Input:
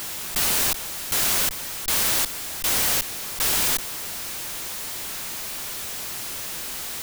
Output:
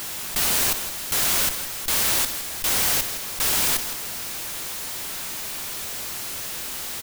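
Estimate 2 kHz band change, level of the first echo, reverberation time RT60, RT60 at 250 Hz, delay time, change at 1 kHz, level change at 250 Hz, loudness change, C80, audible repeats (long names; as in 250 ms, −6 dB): +0.5 dB, −13.5 dB, no reverb audible, no reverb audible, 60 ms, +0.5 dB, +0.5 dB, +0.5 dB, no reverb audible, 2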